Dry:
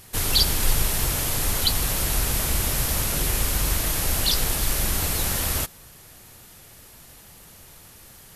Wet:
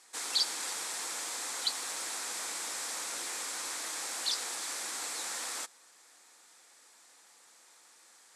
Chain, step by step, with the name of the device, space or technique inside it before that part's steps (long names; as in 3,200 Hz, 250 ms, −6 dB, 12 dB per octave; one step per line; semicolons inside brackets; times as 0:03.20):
phone speaker on a table (loudspeaker in its box 370–8,900 Hz, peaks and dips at 400 Hz −10 dB, 610 Hz −8 dB, 2,900 Hz −7 dB, 7,700 Hz +4 dB)
level −8 dB